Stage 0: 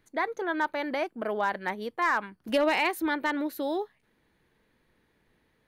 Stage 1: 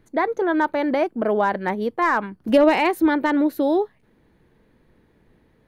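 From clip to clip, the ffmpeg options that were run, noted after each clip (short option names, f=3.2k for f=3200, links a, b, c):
-af "tiltshelf=f=940:g=6,volume=7dB"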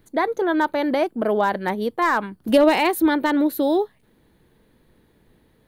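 -af "aexciter=amount=1.7:drive=6:freq=3.2k"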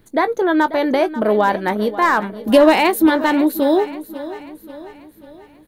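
-filter_complex "[0:a]asplit=2[a][b];[b]adelay=19,volume=-13.5dB[c];[a][c]amix=inputs=2:normalize=0,aecho=1:1:539|1078|1617|2156|2695:0.178|0.0871|0.0427|0.0209|0.0103,volume=4dB"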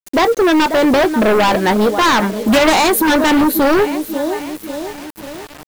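-filter_complex "[0:a]asplit=2[a][b];[b]aeval=exprs='0.891*sin(PI/2*5.62*val(0)/0.891)':c=same,volume=-9dB[c];[a][c]amix=inputs=2:normalize=0,acrusher=bits=4:mix=0:aa=0.000001,volume=-2.5dB"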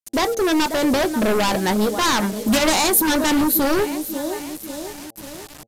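-af "bass=f=250:g=5,treble=f=4k:g=10,bandreject=f=113.8:t=h:w=4,bandreject=f=227.6:t=h:w=4,bandreject=f=341.4:t=h:w=4,bandreject=f=455.2:t=h:w=4,bandreject=f=569:t=h:w=4,bandreject=f=682.8:t=h:w=4,bandreject=f=796.6:t=h:w=4,aresample=32000,aresample=44100,volume=-7.5dB"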